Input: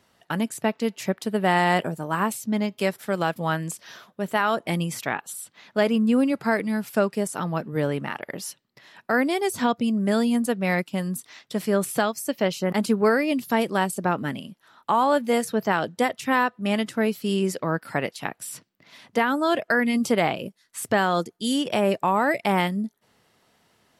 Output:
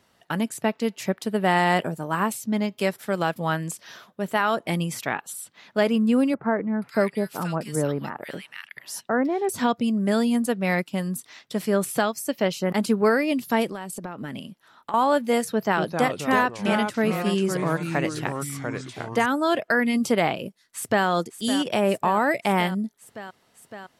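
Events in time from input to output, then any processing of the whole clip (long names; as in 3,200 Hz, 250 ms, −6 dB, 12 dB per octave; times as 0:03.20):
0:06.34–0:09.49: multiband delay without the direct sound lows, highs 480 ms, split 1,700 Hz
0:13.70–0:14.94: downward compressor 16 to 1, threshold −29 dBFS
0:15.52–0:19.26: delay with pitch and tempo change per echo 234 ms, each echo −3 semitones, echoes 3, each echo −6 dB
0:20.47–0:21.06: delay throw 560 ms, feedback 80%, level −11 dB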